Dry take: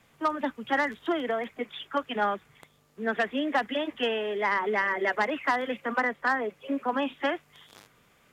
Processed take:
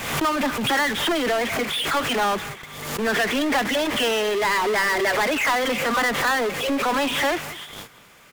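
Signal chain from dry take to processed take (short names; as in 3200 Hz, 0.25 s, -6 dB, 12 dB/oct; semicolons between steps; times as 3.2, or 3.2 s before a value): gate -49 dBFS, range -50 dB; low shelf 410 Hz -6 dB; power-law curve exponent 0.35; speakerphone echo 0.19 s, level -14 dB; backwards sustainer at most 50 dB/s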